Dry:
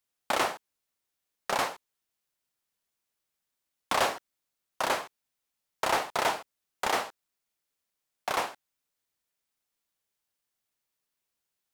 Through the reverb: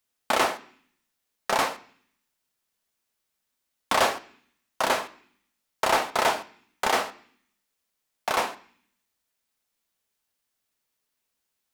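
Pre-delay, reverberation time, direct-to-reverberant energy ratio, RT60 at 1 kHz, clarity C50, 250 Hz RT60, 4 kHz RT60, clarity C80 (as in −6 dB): 3 ms, 0.55 s, 10.0 dB, 0.55 s, 17.5 dB, 0.85 s, 0.70 s, 21.5 dB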